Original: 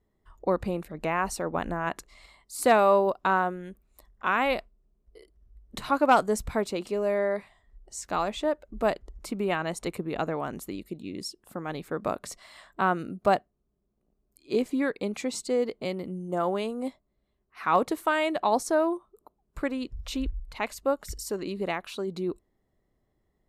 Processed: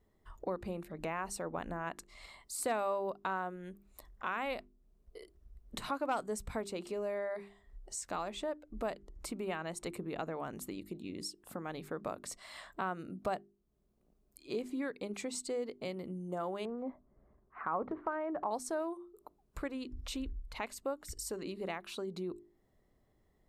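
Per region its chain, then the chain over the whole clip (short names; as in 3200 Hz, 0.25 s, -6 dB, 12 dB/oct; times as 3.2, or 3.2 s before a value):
16.65–18.51 LPF 1500 Hz 24 dB/oct + transient shaper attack +2 dB, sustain +9 dB
whole clip: notches 50/100/150/200/250/300/350/400 Hz; dynamic EQ 8200 Hz, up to +6 dB, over -57 dBFS, Q 6.1; compressor 2:1, threshold -47 dBFS; gain +2 dB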